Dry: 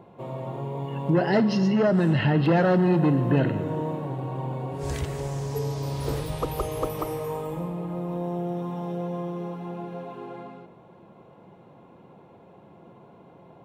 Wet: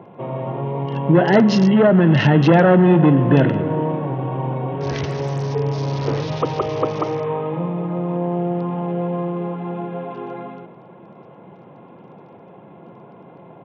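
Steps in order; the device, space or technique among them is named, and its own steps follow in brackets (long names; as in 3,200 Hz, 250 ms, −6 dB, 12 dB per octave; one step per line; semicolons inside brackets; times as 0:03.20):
Bluetooth headset (high-pass filter 110 Hz 24 dB per octave; downsampling to 16,000 Hz; level +8 dB; SBC 64 kbit/s 48,000 Hz)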